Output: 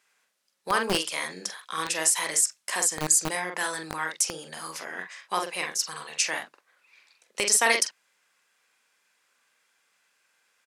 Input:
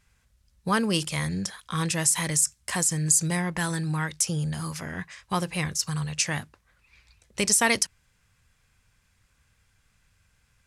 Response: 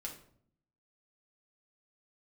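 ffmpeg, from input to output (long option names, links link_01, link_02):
-filter_complex "[0:a]acrossover=split=320|5600[link_01][link_02][link_03];[link_01]acrusher=bits=3:mix=0:aa=0.000001[link_04];[link_02]asplit=2[link_05][link_06];[link_06]adelay=44,volume=-4dB[link_07];[link_05][link_07]amix=inputs=2:normalize=0[link_08];[link_04][link_08][link_03]amix=inputs=3:normalize=0"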